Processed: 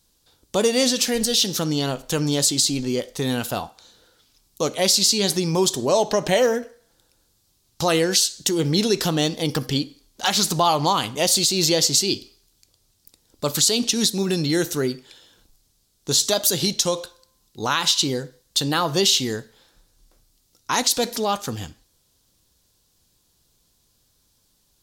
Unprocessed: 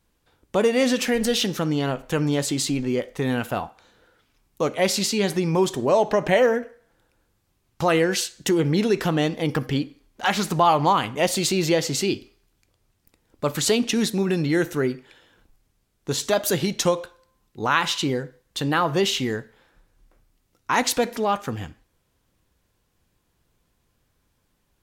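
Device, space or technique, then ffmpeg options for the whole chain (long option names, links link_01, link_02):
over-bright horn tweeter: -af "highshelf=frequency=3100:width_type=q:width=1.5:gain=10.5,alimiter=limit=-7dB:level=0:latency=1:release=150"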